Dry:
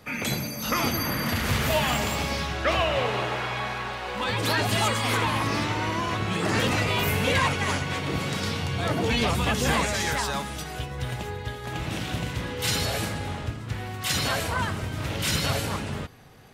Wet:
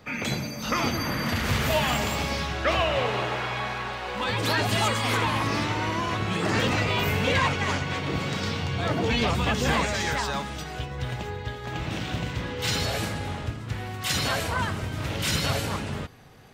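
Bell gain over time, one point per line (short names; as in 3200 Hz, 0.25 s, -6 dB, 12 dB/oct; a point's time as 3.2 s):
bell 11000 Hz 0.61 oct
0.91 s -15 dB
1.61 s -5 dB
6.34 s -5 dB
6.78 s -14.5 dB
12.59 s -14.5 dB
13.11 s -3.5 dB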